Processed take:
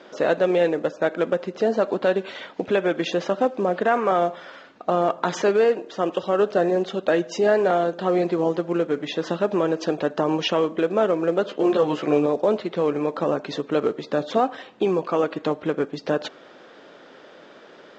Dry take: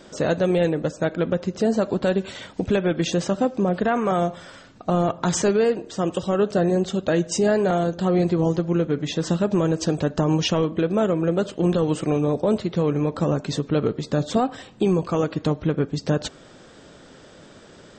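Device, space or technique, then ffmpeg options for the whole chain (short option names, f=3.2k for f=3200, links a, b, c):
telephone: -filter_complex "[0:a]asettb=1/sr,asplit=3[a][b][c];[a]atrim=end=11.464[d];[b]atrim=start=11.46:end=12.26,asetpts=PTS-STARTPTS,afade=t=in:d=0.004:c=qsin,afade=t=out:st=0.796:d=0.004:c=qsin,asplit=2[e][f];[f]adelay=14,volume=-2.5dB[g];[e][g]amix=inputs=2:normalize=0,atrim=end_sample=35280[h];[c]atrim=start=12.256[i];[d][h]acrossfade=d=0.004:c1=hsin:c2=qsin[j];[j][i]acrossfade=d=0.004:c1=qsin:c2=hsin,highpass=360,lowpass=3.2k,volume=3dB" -ar 16000 -c:a pcm_mulaw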